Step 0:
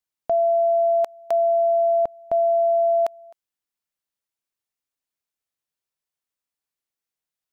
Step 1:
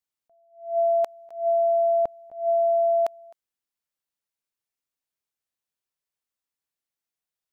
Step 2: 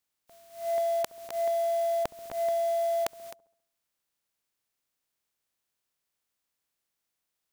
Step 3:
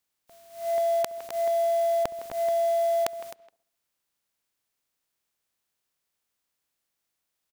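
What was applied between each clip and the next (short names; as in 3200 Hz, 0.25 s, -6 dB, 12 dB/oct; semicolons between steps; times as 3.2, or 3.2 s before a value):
attack slew limiter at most 140 dB/s; gain -2 dB
spectral contrast lowered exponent 0.49; dark delay 67 ms, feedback 50%, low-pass 710 Hz, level -23 dB; compressor 5:1, threshold -34 dBFS, peak gain reduction 13.5 dB; gain +6 dB
speakerphone echo 0.16 s, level -14 dB; gain +2 dB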